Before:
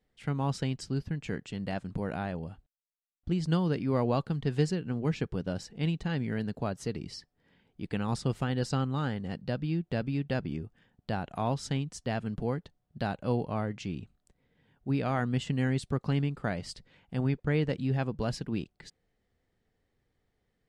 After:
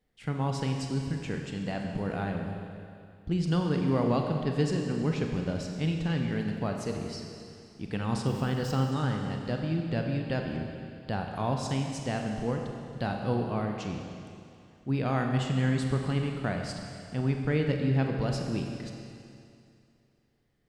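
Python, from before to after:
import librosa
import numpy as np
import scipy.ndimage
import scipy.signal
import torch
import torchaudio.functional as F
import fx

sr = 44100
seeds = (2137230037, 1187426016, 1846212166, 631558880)

y = fx.rev_schroeder(x, sr, rt60_s=2.5, comb_ms=30, drr_db=2.5)
y = fx.resample_linear(y, sr, factor=2, at=(8.27, 8.92))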